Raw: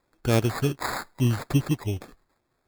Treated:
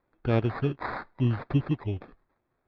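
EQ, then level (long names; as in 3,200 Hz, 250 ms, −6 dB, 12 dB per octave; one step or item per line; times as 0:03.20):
Bessel low-pass filter 2,300 Hz, order 6
−2.5 dB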